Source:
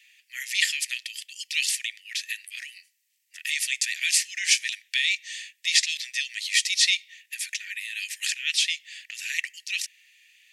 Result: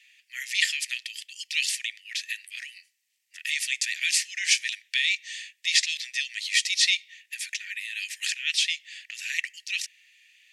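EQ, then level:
high-shelf EQ 11,000 Hz −10 dB
0.0 dB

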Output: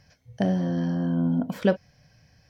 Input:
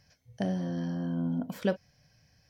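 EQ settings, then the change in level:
high-shelf EQ 4,700 Hz −7.5 dB
+7.0 dB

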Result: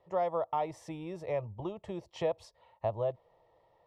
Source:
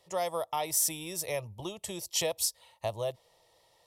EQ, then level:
low-pass filter 1,300 Hz 12 dB per octave
+1.5 dB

